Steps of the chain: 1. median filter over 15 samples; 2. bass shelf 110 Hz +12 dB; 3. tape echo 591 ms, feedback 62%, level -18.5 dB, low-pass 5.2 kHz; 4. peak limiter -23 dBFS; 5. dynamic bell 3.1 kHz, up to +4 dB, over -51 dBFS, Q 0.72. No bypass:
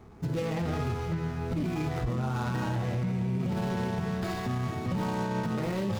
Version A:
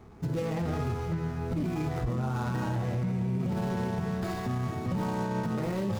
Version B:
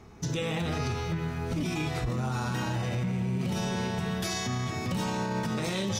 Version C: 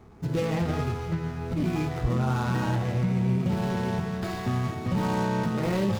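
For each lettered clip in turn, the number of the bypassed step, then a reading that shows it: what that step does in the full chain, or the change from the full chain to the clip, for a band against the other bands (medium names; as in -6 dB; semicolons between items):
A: 5, 4 kHz band -3.0 dB; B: 1, 8 kHz band +11.0 dB; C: 4, mean gain reduction 3.0 dB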